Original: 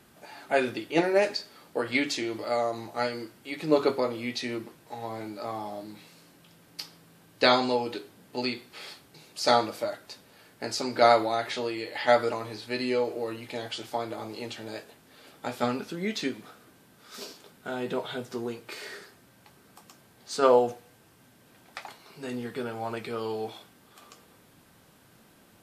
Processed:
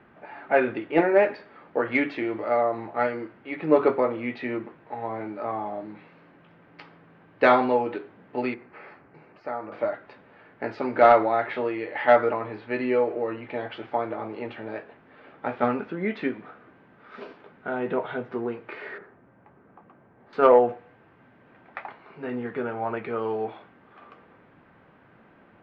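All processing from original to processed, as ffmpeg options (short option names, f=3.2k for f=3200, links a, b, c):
-filter_complex "[0:a]asettb=1/sr,asplit=3[a][b][c];[a]atrim=end=8.544[d];[b]atrim=start=8.54:end=9.72,asetpts=PTS-STARTPTS,afade=t=in:d=0.004:c=qsin,afade=t=out:st=1.176:d=0.004:c=qsin,equalizer=f=3.5k:w=2.5:g=-14.5,acompressor=threshold=-44dB:ratio=2:attack=3.2:release=140:knee=1:detection=peak,lowpass=6.2k[e];[c]atrim=start=9.716[f];[d][e]acrossfade=d=0.004:c1=hsin:c2=qsin[g];[g][f]acrossfade=d=0.004:c1=qsin:c2=hsin,asettb=1/sr,asplit=3[h][i][j];[h]atrim=end=18.984[k];[i]atrim=start=18.98:end=20.33,asetpts=PTS-STARTPTS,afade=t=in:d=0.004:c=qsin,afade=t=out:st=1.346:d=0.004:c=qsin,lowpass=f=1.4k:p=1,aemphasis=mode=reproduction:type=75kf[l];[j]atrim=start=20.326[m];[k][l]acrossfade=d=0.004:c1=hsin:c2=qsin[n];[n][m]acrossfade=d=0.004:c1=qsin:c2=hsin,lowpass=f=2.2k:w=0.5412,lowpass=f=2.2k:w=1.3066,lowshelf=f=190:g=-6,acontrast=75,volume=-1.5dB"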